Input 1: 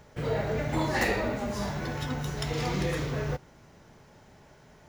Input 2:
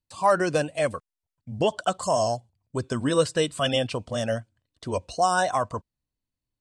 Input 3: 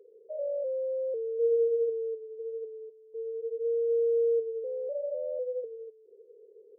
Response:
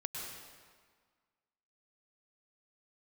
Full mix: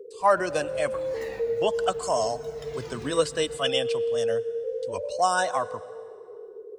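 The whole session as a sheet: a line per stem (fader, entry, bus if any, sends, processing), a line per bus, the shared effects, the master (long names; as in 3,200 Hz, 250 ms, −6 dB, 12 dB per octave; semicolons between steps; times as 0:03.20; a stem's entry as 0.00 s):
−12.5 dB, 0.20 s, bus A, send −12 dB, flanger whose copies keep moving one way falling 1 Hz
−2.5 dB, 0.00 s, no bus, send −18.5 dB, low-shelf EQ 210 Hz −12 dB; multiband upward and downward expander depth 100%
−2.0 dB, 0.00 s, bus A, send −4.5 dB, tilt shelving filter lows +9 dB, about 630 Hz; automatic ducking −11 dB, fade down 1.90 s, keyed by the second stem
bus A: 0.0 dB, brickwall limiter −34.5 dBFS, peak gain reduction 8.5 dB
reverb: on, RT60 1.7 s, pre-delay 97 ms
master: multiband upward and downward compressor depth 40%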